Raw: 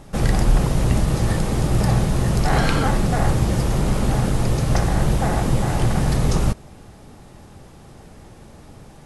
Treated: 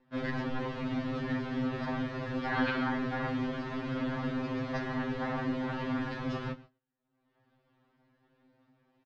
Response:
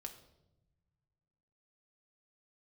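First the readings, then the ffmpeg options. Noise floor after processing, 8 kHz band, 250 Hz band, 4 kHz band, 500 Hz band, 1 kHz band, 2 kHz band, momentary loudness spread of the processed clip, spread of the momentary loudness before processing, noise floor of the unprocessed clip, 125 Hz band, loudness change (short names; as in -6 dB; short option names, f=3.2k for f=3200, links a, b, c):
-78 dBFS, under -30 dB, -9.0 dB, -13.5 dB, -11.5 dB, -11.5 dB, -7.0 dB, 5 LU, 2 LU, -45 dBFS, -20.0 dB, -13.5 dB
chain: -filter_complex "[0:a]aemphasis=mode=reproduction:type=cd,agate=range=-34dB:threshold=-32dB:ratio=16:detection=peak,acompressor=mode=upward:threshold=-38dB:ratio=2.5,highpass=120,equalizer=f=160:t=q:w=4:g=-10,equalizer=f=250:t=q:w=4:g=5,equalizer=f=390:t=q:w=4:g=-9,equalizer=f=740:t=q:w=4:g=-7,equalizer=f=1.7k:t=q:w=4:g=4,lowpass=f=4.2k:w=0.5412,lowpass=f=4.2k:w=1.3066,aeval=exprs='val(0)*sin(2*PI*40*n/s)':c=same,asplit=2[a][b];[b]adelay=27,volume=-13dB[c];[a][c]amix=inputs=2:normalize=0,aecho=1:1:118:0.075,afftfilt=real='re*2.45*eq(mod(b,6),0)':imag='im*2.45*eq(mod(b,6),0)':win_size=2048:overlap=0.75,volume=-3.5dB"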